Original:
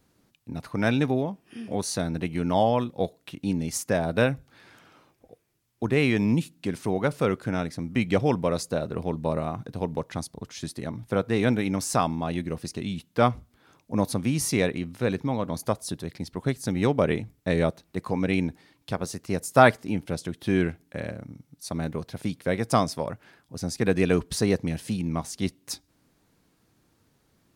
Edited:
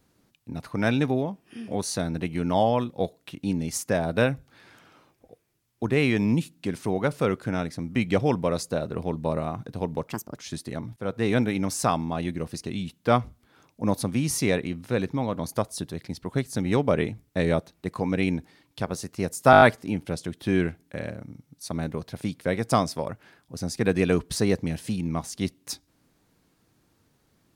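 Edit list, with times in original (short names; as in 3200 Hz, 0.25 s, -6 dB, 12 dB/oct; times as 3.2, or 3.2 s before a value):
10.07–10.48 speed 135%
11.07–11.43 fade in equal-power, from -15 dB
19.62 stutter 0.02 s, 6 plays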